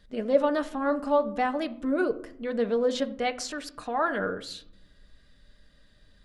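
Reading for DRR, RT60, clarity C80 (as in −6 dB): 7.0 dB, 0.70 s, 19.0 dB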